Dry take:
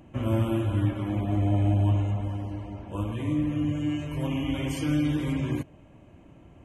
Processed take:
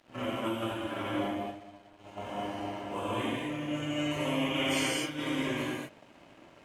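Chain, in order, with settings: reverse echo 59 ms -17.5 dB; negative-ratio compressor -29 dBFS, ratio -0.5; weighting filter A; non-linear reverb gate 0.28 s flat, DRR -8 dB; crossover distortion -52 dBFS; gain -3.5 dB

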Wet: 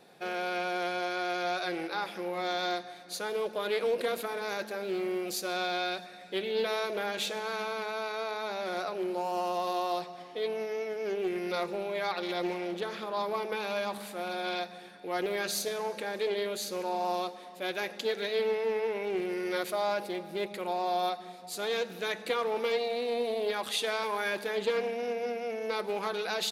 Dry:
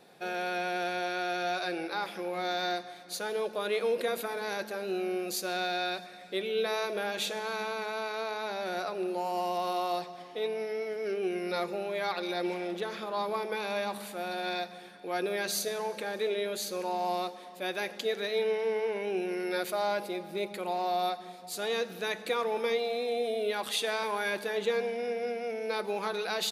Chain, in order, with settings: Doppler distortion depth 0.18 ms

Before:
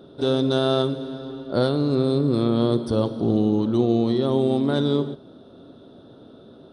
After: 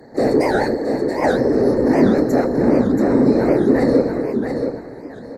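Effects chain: soft clip -16.5 dBFS, distortion -14 dB; notch 3800 Hz, Q 5.4; doubler 30 ms -10.5 dB; varispeed +25%; fixed phaser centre 670 Hz, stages 8; whisperiser; ripple EQ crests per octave 1, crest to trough 8 dB; feedback echo 0.68 s, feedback 29%, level -6 dB; dynamic EQ 370 Hz, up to +5 dB, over -39 dBFS, Q 1.9; record warp 78 rpm, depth 250 cents; gain +7 dB

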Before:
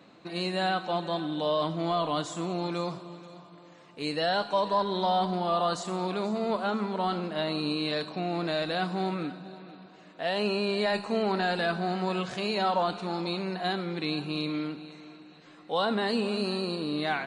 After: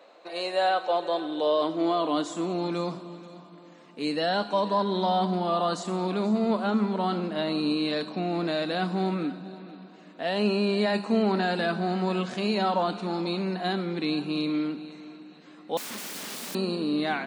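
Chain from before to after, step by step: 15.77–16.55 wrapped overs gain 33 dB; high-pass sweep 550 Hz -> 220 Hz, 0.63–2.76

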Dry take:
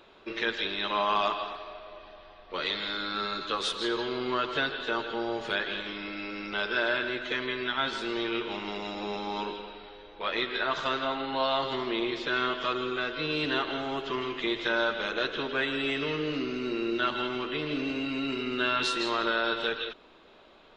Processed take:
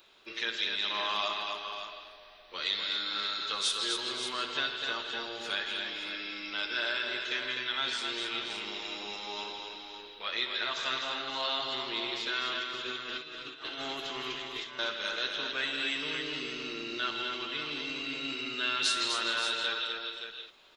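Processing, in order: pre-emphasis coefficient 0.9; 12.53–14.79 negative-ratio compressor -48 dBFS, ratio -0.5; tapped delay 62/251/525/571 ms -13/-5.5/-14/-9 dB; gain +7 dB

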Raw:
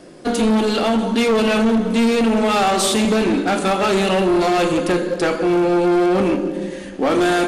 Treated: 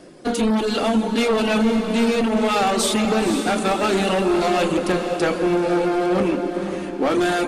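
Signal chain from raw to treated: reverb removal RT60 0.51 s; on a send: diffused feedback echo 0.51 s, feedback 47%, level -8 dB; on the sum: gain -2 dB

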